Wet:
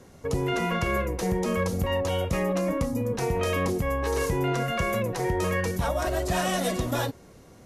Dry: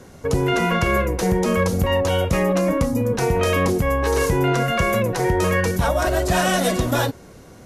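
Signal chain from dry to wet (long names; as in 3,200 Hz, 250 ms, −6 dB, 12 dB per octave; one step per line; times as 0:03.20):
notch filter 1,500 Hz, Q 16
level −7 dB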